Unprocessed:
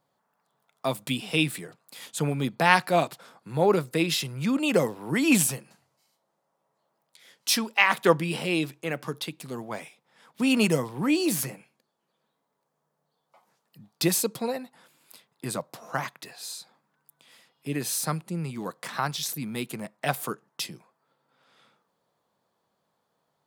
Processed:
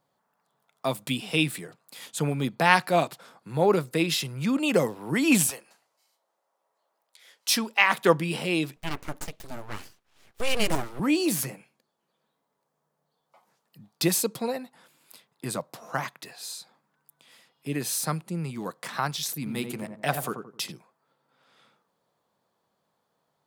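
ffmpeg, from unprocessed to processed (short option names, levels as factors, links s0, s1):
-filter_complex "[0:a]asettb=1/sr,asplit=3[s0][s1][s2];[s0]atrim=end=5.504[s3];[s1]atrim=start=5.5:end=7.5,asetpts=PTS-STARTPTS,afade=t=in:d=0.004:c=qsin,afade=t=out:st=1.996:d=0.004:c=qsin,highpass=450[s4];[s2]atrim=start=7.496[s5];[s3][s4]acrossfade=d=0.004:c1=hsin:c2=qsin[s6];[s6][s5]acrossfade=d=0.004:c1=qsin:c2=hsin,asettb=1/sr,asplit=3[s7][s8][s9];[s7]atrim=end=8.764[s10];[s8]atrim=start=8.76:end=11,asetpts=PTS-STARTPTS,afade=t=in:d=0.004:c=qsin,afade=t=out:st=2.236:d=0.004:c=qsin,aeval=exprs='abs(val(0))':c=same[s11];[s9]atrim=start=10.996[s12];[s10][s11]acrossfade=d=0.004:c1=hsin:c2=qsin[s13];[s13][s12]acrossfade=d=0.004:c1=qsin:c2=hsin,asettb=1/sr,asplit=3[s14][s15][s16];[s14]atrim=end=19.374[s17];[s15]atrim=start=19.37:end=20.72,asetpts=PTS-STARTPTS,afade=t=in:d=0.004:c=qsin,afade=t=out:st=1.346:d=0.004:c=qsin,asplit=2[s18][s19];[s19]adelay=87,lowpass=f=1100:p=1,volume=0.531,asplit=2[s20][s21];[s21]adelay=87,lowpass=f=1100:p=1,volume=0.36,asplit=2[s22][s23];[s23]adelay=87,lowpass=f=1100:p=1,volume=0.36,asplit=2[s24][s25];[s25]adelay=87,lowpass=f=1100:p=1,volume=0.36[s26];[s18][s20][s22][s24][s26]amix=inputs=5:normalize=0,atrim=end_sample=59535[s27];[s16]atrim=start=20.716[s28];[s17][s27]acrossfade=d=0.004:c1=hsin:c2=qsin[s29];[s29][s28]acrossfade=d=0.004:c1=qsin:c2=hsin"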